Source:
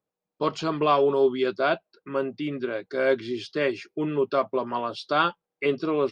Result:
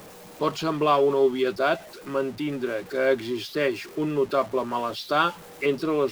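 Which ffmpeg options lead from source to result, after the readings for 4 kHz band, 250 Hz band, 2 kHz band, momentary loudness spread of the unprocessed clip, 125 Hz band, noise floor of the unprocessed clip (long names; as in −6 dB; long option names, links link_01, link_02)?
+1.5 dB, +1.0 dB, +0.5 dB, 9 LU, +1.0 dB, below −85 dBFS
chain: -af "aeval=exprs='val(0)+0.5*0.0133*sgn(val(0))':channel_layout=same"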